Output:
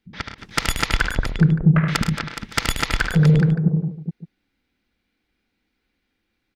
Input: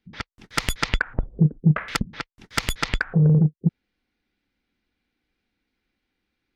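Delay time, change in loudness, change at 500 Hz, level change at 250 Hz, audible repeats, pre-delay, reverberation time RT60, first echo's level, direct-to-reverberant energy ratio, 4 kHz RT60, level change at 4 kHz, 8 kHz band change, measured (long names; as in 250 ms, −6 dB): 74 ms, +3.0 dB, +4.0 dB, +3.5 dB, 5, no reverb audible, no reverb audible, −6.5 dB, no reverb audible, no reverb audible, +4.0 dB, +4.0 dB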